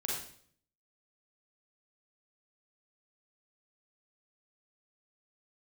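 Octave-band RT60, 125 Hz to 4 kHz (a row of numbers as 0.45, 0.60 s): 0.80, 0.70, 0.60, 0.50, 0.50, 0.55 s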